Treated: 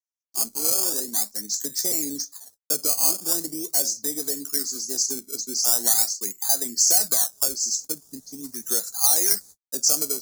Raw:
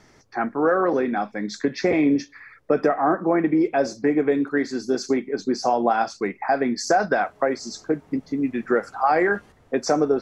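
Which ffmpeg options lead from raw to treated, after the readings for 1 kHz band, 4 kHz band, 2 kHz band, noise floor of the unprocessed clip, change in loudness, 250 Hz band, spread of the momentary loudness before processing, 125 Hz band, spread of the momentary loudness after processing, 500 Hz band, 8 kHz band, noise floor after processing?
-16.0 dB, +10.5 dB, -16.5 dB, -55 dBFS, +1.5 dB, -15.0 dB, 8 LU, under -10 dB, 12 LU, -15.5 dB, +20.0 dB, under -85 dBFS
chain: -filter_complex "[0:a]agate=range=-49dB:threshold=-43dB:ratio=16:detection=peak,equalizer=f=6.6k:t=o:w=0.27:g=5.5,acrossover=split=240|420|3400[a][b][c][d];[c]acrusher=samples=16:mix=1:aa=0.000001:lfo=1:lforange=16:lforate=0.42[e];[a][b][e][d]amix=inputs=4:normalize=0,aexciter=amount=15.7:drive=8.6:freq=4.6k,volume=-15dB"

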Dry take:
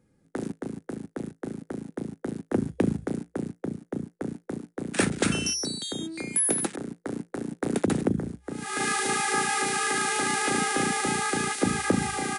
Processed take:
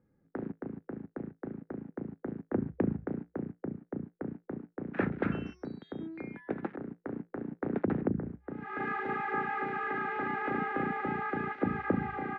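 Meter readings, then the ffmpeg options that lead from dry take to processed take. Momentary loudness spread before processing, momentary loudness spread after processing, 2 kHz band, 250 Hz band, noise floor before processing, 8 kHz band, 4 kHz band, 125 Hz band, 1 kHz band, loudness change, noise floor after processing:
12 LU, 10 LU, -7.5 dB, -5.5 dB, -69 dBFS, under -40 dB, under -25 dB, -5.5 dB, -5.5 dB, -8.0 dB, -74 dBFS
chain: -af "lowpass=f=1.9k:w=0.5412,lowpass=f=1.9k:w=1.3066,volume=-5.5dB"

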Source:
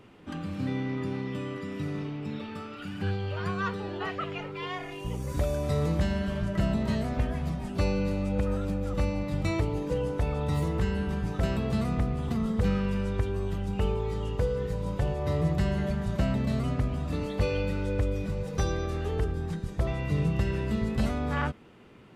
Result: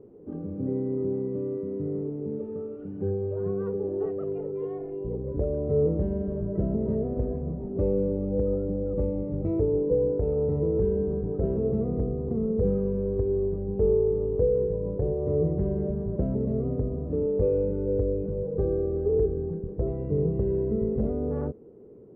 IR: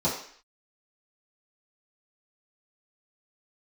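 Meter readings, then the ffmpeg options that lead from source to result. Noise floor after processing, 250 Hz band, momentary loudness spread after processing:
-37 dBFS, +1.0 dB, 8 LU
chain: -af "lowpass=f=440:t=q:w=4.9,volume=-2dB"

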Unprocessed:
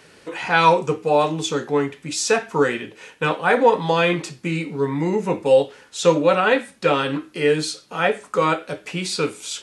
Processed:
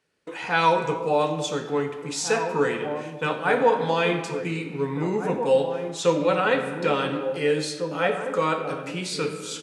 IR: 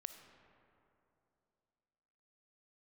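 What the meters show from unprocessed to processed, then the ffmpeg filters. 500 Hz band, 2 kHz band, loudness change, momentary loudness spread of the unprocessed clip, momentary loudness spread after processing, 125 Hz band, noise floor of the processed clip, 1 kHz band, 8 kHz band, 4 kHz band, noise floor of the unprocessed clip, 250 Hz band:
-4.0 dB, -4.5 dB, -4.0 dB, 10 LU, 8 LU, -4.0 dB, -37 dBFS, -4.0 dB, -5.0 dB, -4.5 dB, -52 dBFS, -4.0 dB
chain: -filter_complex "[0:a]asplit=2[a][b];[b]adelay=1749,volume=-8dB,highshelf=f=4k:g=-39.4[c];[a][c]amix=inputs=2:normalize=0,agate=range=-20dB:threshold=-40dB:ratio=16:detection=peak[d];[1:a]atrim=start_sample=2205,afade=t=out:st=0.43:d=0.01,atrim=end_sample=19404[e];[d][e]afir=irnorm=-1:irlink=0"

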